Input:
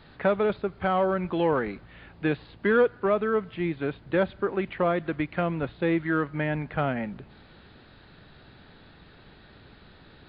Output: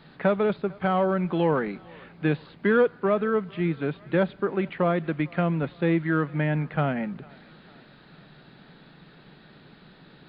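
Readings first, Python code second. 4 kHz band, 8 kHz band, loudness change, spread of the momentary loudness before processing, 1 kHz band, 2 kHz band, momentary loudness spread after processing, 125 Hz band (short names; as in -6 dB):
0.0 dB, n/a, +1.5 dB, 7 LU, 0.0 dB, 0.0 dB, 5 LU, +5.0 dB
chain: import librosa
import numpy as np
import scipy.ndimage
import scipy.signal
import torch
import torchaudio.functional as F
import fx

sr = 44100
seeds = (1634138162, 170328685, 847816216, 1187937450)

y = fx.low_shelf_res(x, sr, hz=120.0, db=-7.5, q=3.0)
y = fx.echo_thinned(y, sr, ms=450, feedback_pct=65, hz=500.0, wet_db=-23.5)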